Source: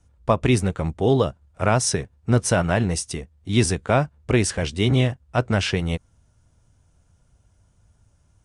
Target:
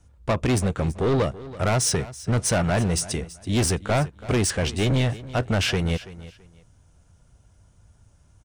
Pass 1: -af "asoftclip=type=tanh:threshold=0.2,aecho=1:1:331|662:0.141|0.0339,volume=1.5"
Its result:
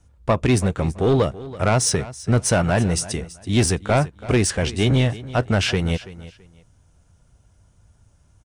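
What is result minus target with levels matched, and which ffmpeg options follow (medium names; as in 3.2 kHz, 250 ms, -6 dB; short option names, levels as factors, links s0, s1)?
saturation: distortion -6 dB
-af "asoftclip=type=tanh:threshold=0.0891,aecho=1:1:331|662:0.141|0.0339,volume=1.5"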